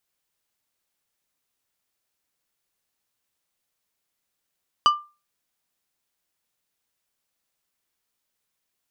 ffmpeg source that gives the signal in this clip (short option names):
-f lavfi -i "aevalsrc='0.316*pow(10,-3*t/0.3)*sin(2*PI*1190*t)+0.133*pow(10,-3*t/0.158)*sin(2*PI*2975*t)+0.0562*pow(10,-3*t/0.114)*sin(2*PI*4760*t)+0.0237*pow(10,-3*t/0.097)*sin(2*PI*5950*t)+0.01*pow(10,-3*t/0.081)*sin(2*PI*7735*t)':d=0.89:s=44100"